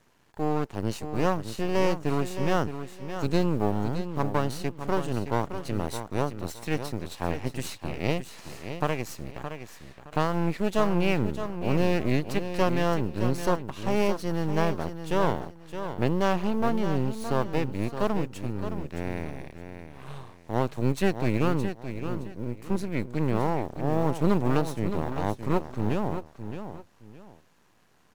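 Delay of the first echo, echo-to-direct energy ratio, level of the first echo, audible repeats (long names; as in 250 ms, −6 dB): 617 ms, −9.0 dB, −9.5 dB, 2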